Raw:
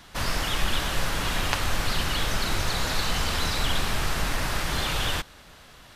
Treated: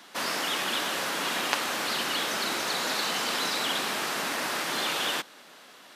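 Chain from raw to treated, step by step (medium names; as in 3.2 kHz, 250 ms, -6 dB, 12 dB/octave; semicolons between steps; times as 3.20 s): high-pass 230 Hz 24 dB/octave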